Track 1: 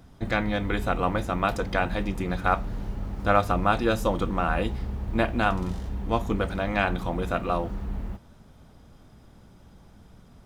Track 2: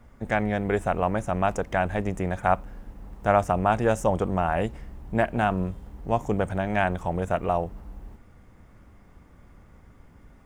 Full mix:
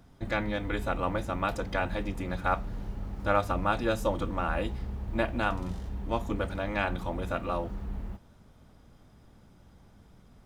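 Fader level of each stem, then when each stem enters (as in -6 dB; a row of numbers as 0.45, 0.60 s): -5.0, -13.5 dB; 0.00, 0.00 s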